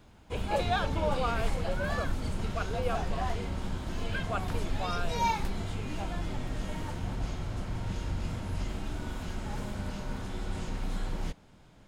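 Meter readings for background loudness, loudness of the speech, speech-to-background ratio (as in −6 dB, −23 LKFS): −35.5 LKFS, −36.5 LKFS, −1.0 dB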